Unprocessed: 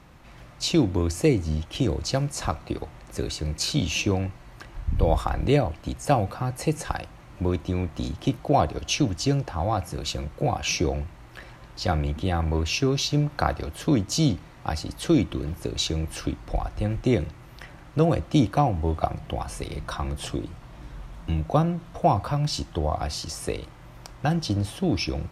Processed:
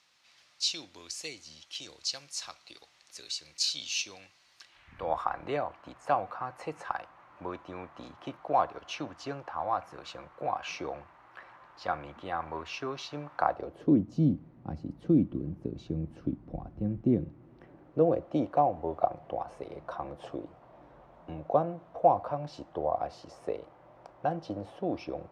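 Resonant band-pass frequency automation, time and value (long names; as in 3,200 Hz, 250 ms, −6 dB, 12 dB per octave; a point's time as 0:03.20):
resonant band-pass, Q 1.6
0:04.64 4,800 Hz
0:05.10 1,100 Hz
0:13.35 1,100 Hz
0:14.04 220 Hz
0:17.14 220 Hz
0:18.46 620 Hz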